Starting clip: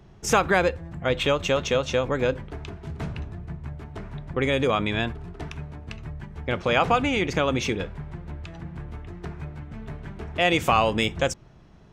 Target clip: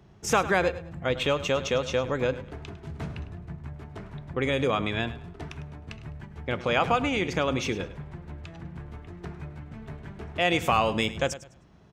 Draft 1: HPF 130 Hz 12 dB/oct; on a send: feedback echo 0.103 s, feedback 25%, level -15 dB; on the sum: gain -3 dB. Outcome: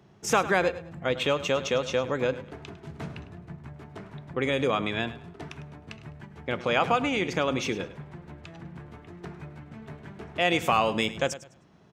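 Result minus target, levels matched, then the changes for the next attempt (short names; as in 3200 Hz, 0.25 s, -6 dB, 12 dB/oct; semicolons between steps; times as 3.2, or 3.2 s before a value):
125 Hz band -3.0 dB
change: HPF 51 Hz 12 dB/oct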